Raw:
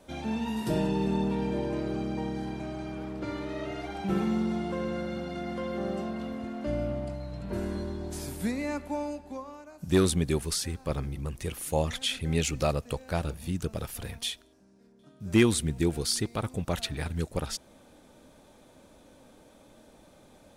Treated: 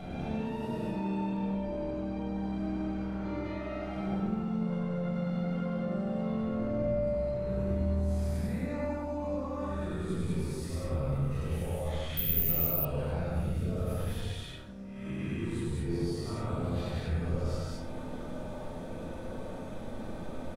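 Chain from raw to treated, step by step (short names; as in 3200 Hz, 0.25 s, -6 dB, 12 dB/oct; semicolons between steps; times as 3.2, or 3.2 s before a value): spectral swells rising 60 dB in 0.71 s; 0.71–1.33 HPF 340 Hz 6 dB/oct; 10.2–11.17 high shelf 8200 Hz +9.5 dB; limiter -37 dBFS, peak gain reduction 27.5 dB; compressor 2:1, threshold -47 dBFS, peak gain reduction 4 dB; high shelf 2700 Hz -11 dB; loudspeakers at several distances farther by 35 m -2 dB, 67 m 0 dB; shoebox room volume 1000 m³, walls furnished, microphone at 6.7 m; 12.17–12.85 careless resampling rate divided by 3×, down filtered, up zero stuff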